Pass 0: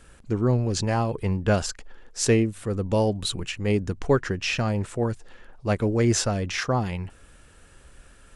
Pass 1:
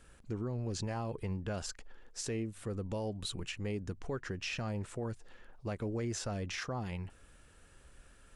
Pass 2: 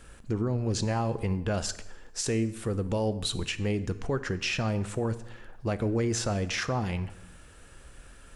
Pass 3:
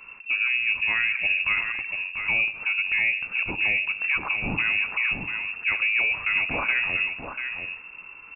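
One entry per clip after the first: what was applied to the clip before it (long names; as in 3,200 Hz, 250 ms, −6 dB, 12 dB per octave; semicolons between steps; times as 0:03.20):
downward compressor 2 to 1, threshold −27 dBFS, peak gain reduction 7 dB; brickwall limiter −21 dBFS, peak gain reduction 7.5 dB; level −8 dB
dense smooth reverb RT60 0.95 s, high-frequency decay 0.85×, DRR 12.5 dB; level +8.5 dB
single-tap delay 690 ms −7 dB; voice inversion scrambler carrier 2,700 Hz; level +3.5 dB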